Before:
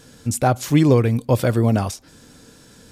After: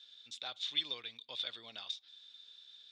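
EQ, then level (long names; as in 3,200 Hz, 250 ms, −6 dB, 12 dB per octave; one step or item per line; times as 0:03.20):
resonant band-pass 3,600 Hz, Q 18
high-frequency loss of the air 150 metres
spectral tilt +2 dB per octave
+9.0 dB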